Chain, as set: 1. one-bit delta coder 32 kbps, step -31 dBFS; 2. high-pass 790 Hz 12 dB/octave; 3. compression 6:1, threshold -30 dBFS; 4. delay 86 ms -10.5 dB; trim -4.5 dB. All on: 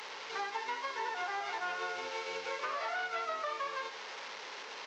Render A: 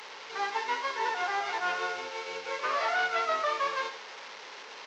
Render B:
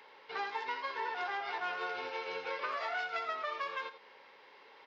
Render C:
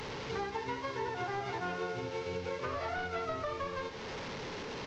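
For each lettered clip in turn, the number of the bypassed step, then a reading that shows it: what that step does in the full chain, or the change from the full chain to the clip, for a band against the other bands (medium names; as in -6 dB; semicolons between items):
3, mean gain reduction 4.0 dB; 1, 4 kHz band -2.5 dB; 2, 250 Hz band +16.0 dB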